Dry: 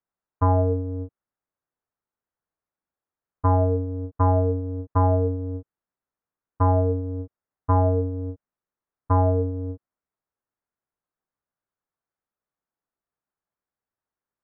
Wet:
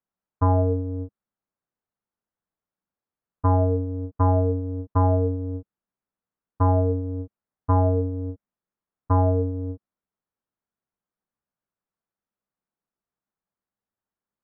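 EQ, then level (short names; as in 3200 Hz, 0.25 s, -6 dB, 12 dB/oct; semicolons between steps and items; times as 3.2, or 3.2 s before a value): air absorption 310 m; bell 200 Hz +6.5 dB 0.49 oct; 0.0 dB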